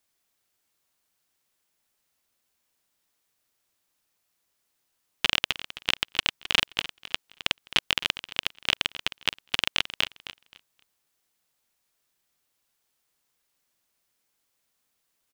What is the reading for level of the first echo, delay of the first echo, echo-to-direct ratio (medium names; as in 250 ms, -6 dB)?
-14.0 dB, 263 ms, -13.5 dB